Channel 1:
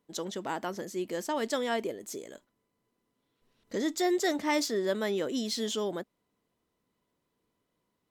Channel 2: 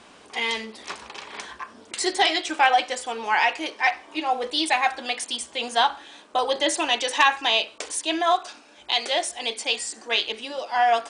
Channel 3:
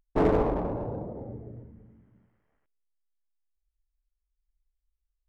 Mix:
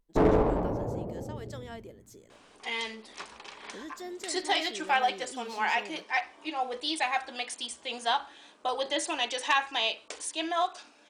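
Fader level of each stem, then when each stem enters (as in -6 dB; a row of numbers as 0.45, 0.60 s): -13.5, -7.5, +0.5 dB; 0.00, 2.30, 0.00 s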